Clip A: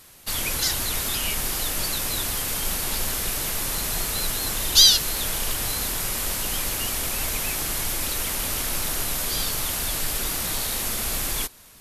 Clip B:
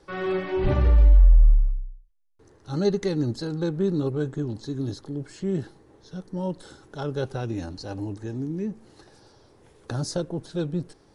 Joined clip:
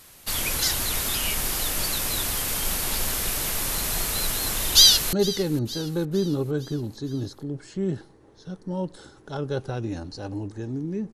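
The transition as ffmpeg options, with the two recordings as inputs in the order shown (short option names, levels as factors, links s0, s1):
-filter_complex "[0:a]apad=whole_dur=11.13,atrim=end=11.13,atrim=end=5.132[s0];[1:a]atrim=start=2.788:end=8.79[s1];[s0][s1]acrossfade=d=0.004:c1=hsin:c2=hsin,asplit=2[s2][s3];[s3]afade=t=in:st=4.73:d=0.01,afade=t=out:st=5.13:d=0.01,aecho=0:1:460|920|1380|1840|2300:0.133352|0.0733437|0.040339|0.0221865|0.0122026[s4];[s2][s4]amix=inputs=2:normalize=0"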